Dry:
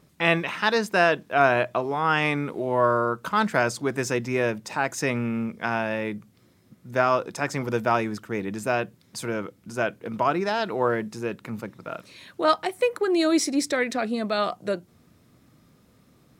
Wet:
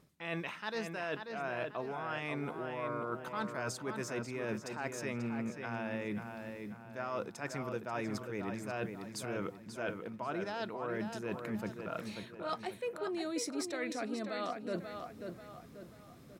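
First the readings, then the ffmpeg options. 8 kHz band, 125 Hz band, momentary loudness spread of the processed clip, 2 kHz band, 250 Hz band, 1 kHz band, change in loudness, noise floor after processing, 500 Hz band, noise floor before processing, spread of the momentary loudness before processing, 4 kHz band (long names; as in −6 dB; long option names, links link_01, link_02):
−11.5 dB, −11.5 dB, 7 LU, −15.0 dB, −11.5 dB, −15.5 dB, −14.5 dB, −54 dBFS, −14.0 dB, −60 dBFS, 11 LU, −14.0 dB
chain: -filter_complex "[0:a]areverse,acompressor=threshold=-36dB:ratio=8,areverse,asplit=2[link_01][link_02];[link_02]adelay=538,lowpass=frequency=3800:poles=1,volume=-6dB,asplit=2[link_03][link_04];[link_04]adelay=538,lowpass=frequency=3800:poles=1,volume=0.43,asplit=2[link_05][link_06];[link_06]adelay=538,lowpass=frequency=3800:poles=1,volume=0.43,asplit=2[link_07][link_08];[link_08]adelay=538,lowpass=frequency=3800:poles=1,volume=0.43,asplit=2[link_09][link_10];[link_10]adelay=538,lowpass=frequency=3800:poles=1,volume=0.43[link_11];[link_01][link_03][link_05][link_07][link_09][link_11]amix=inputs=6:normalize=0"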